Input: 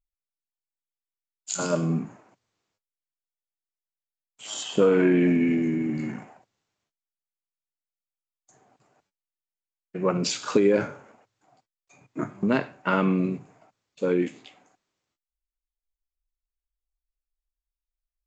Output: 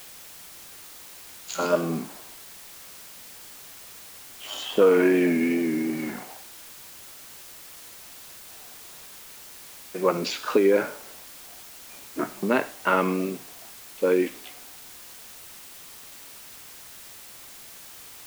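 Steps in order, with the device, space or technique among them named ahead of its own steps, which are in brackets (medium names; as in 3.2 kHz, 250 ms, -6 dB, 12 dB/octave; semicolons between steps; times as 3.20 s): dictaphone (band-pass 320–3800 Hz; level rider gain up to 10.5 dB; wow and flutter; white noise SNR 16 dB); trim -5.5 dB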